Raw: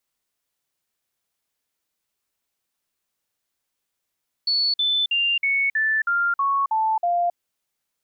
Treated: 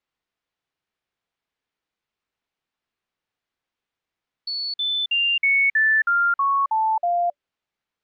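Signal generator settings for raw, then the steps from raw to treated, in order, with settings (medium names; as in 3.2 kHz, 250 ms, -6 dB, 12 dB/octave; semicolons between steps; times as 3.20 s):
stepped sine 4.43 kHz down, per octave 3, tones 9, 0.27 s, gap 0.05 s -18 dBFS
low-pass 3.3 kHz 12 dB/octave; band-stop 580 Hz, Q 19; dynamic bell 2 kHz, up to +4 dB, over -32 dBFS, Q 1.2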